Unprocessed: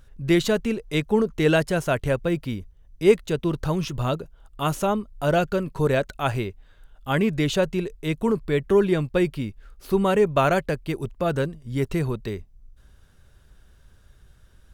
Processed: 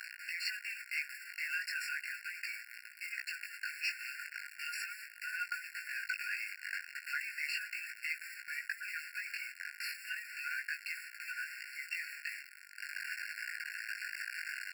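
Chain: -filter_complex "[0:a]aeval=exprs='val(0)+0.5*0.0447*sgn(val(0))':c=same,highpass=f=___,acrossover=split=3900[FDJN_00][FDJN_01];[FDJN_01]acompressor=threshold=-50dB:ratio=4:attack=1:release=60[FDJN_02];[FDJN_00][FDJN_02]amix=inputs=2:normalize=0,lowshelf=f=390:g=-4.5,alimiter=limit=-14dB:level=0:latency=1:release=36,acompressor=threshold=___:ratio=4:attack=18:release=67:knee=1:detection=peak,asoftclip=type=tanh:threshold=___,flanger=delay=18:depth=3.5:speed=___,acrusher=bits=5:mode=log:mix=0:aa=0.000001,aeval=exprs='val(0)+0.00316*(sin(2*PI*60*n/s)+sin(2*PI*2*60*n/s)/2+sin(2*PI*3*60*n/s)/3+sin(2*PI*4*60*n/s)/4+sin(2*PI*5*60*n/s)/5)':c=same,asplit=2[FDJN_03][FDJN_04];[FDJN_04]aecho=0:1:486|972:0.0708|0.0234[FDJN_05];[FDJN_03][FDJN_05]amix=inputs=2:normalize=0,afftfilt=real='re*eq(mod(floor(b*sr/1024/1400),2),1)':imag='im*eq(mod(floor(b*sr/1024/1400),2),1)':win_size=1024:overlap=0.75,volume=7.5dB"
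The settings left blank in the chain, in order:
270, -31dB, -27.5dB, 0.36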